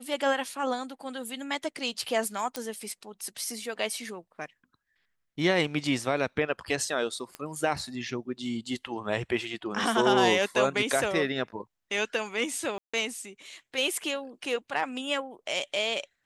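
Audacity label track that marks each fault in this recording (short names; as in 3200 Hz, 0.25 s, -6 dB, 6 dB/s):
2.560000	2.560000	pop -16 dBFS
7.350000	7.350000	pop -21 dBFS
12.780000	12.940000	gap 0.155 s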